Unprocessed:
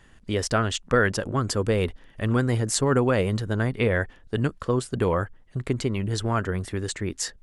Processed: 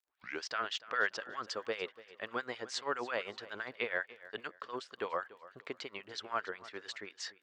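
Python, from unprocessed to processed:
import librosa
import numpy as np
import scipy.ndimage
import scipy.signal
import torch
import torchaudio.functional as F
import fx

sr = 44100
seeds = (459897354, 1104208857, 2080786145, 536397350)

p1 = fx.tape_start_head(x, sr, length_s=0.46)
p2 = scipy.signal.sosfilt(scipy.signal.butter(4, 5100.0, 'lowpass', fs=sr, output='sos'), p1)
p3 = fx.dmg_crackle(p2, sr, seeds[0], per_s=20.0, level_db=-52.0)
p4 = fx.filter_lfo_highpass(p3, sr, shape='sine', hz=7.5, low_hz=520.0, high_hz=1700.0, q=0.74)
p5 = p4 + fx.echo_feedback(p4, sr, ms=290, feedback_pct=29, wet_db=-18, dry=0)
y = p5 * librosa.db_to_amplitude(-7.0)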